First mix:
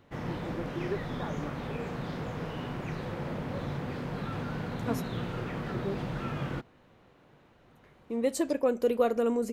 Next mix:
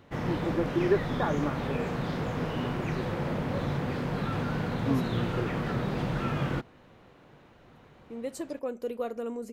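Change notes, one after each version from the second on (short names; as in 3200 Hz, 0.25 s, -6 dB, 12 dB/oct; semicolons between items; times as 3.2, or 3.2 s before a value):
first voice +10.0 dB; second voice -7.5 dB; background +4.5 dB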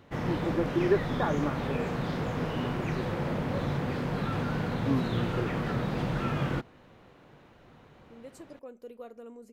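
second voice -11.5 dB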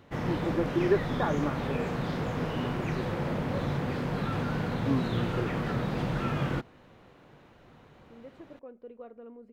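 second voice: add air absorption 440 m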